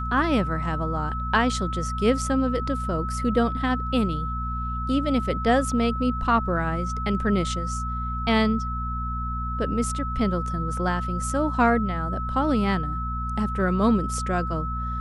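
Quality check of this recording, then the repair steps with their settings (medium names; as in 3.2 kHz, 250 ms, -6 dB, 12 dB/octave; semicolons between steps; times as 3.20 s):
hum 60 Hz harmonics 4 -30 dBFS
whine 1.3 kHz -30 dBFS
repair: de-hum 60 Hz, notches 4; band-stop 1.3 kHz, Q 30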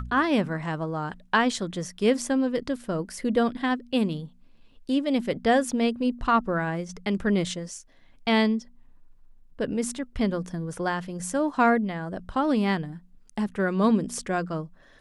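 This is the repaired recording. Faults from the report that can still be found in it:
nothing left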